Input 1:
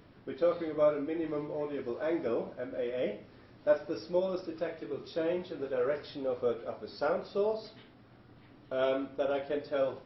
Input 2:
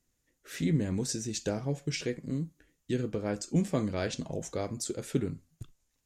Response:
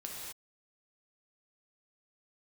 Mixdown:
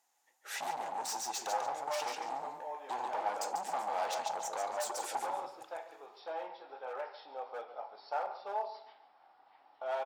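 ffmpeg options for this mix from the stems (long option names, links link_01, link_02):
-filter_complex "[0:a]adelay=1100,volume=-8.5dB,asplit=2[link_01][link_02];[link_02]volume=-14.5dB[link_03];[1:a]asoftclip=type=tanh:threshold=-25dB,acompressor=threshold=-33dB:ratio=6,volume=2dB,asplit=2[link_04][link_05];[link_05]volume=-5.5dB[link_06];[link_03][link_06]amix=inputs=2:normalize=0,aecho=0:1:143|286|429|572:1|0.26|0.0676|0.0176[link_07];[link_01][link_04][link_07]amix=inputs=3:normalize=0,asoftclip=type=hard:threshold=-34.5dB,highpass=frequency=820:width_type=q:width=9.9"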